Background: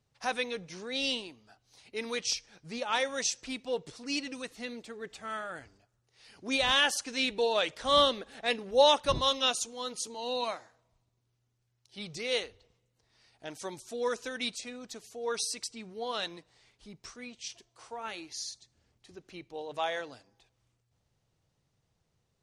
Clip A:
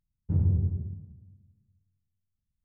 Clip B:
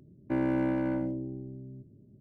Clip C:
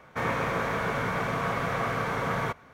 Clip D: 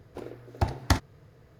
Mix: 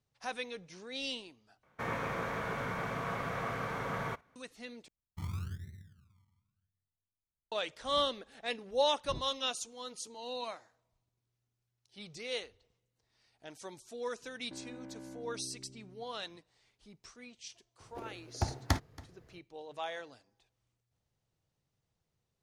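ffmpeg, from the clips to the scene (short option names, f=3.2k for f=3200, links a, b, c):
-filter_complex "[0:a]volume=-7dB[a];[3:a]agate=range=-8dB:threshold=-48dB:ratio=16:release=100:detection=peak[b];[1:a]acrusher=samples=32:mix=1:aa=0.000001:lfo=1:lforange=19.2:lforate=0.89[c];[2:a]acompressor=threshold=-31dB:ratio=6:attack=3.2:release=140:knee=1:detection=peak[d];[4:a]aecho=1:1:278:0.0841[e];[a]asplit=3[f][g][h];[f]atrim=end=1.634[i];[b]atrim=end=2.73,asetpts=PTS-STARTPTS,volume=-8dB[j];[g]atrim=start=4.356:end=4.884[k];[c]atrim=end=2.64,asetpts=PTS-STARTPTS,volume=-14.5dB[l];[h]atrim=start=7.516[m];[d]atrim=end=2.2,asetpts=PTS-STARTPTS,volume=-13dB,afade=t=in:d=0.004:c=hsin,afade=t=out:st=2.196:d=0.004:c=hsin,adelay=14210[n];[e]atrim=end=1.59,asetpts=PTS-STARTPTS,volume=-6.5dB,afade=t=in:d=0.004:c=hsin,afade=t=out:st=1.586:d=0.004:c=hsin,adelay=784980S[o];[i][j]acrossfade=d=0.004:c1=hsin:c2=hsin[p];[p][k]acrossfade=d=0.004:c1=hsin:c2=hsin[q];[q][l]acrossfade=d=0.004:c1=hsin:c2=hsin[r];[r][m]acrossfade=d=0.004:c1=hsin:c2=hsin[s];[s][n][o]amix=inputs=3:normalize=0"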